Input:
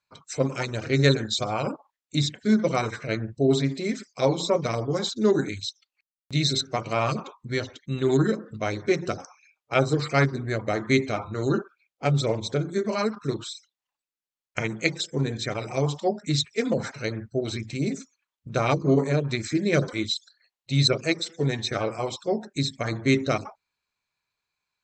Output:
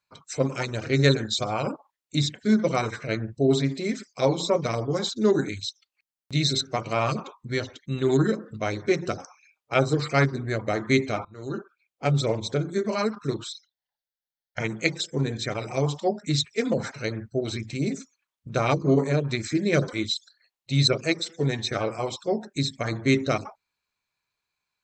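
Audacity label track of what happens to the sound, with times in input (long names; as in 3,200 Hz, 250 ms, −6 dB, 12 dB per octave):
11.250000	12.110000	fade in, from −19 dB
13.520000	14.600000	phaser with its sweep stopped centre 1,700 Hz, stages 8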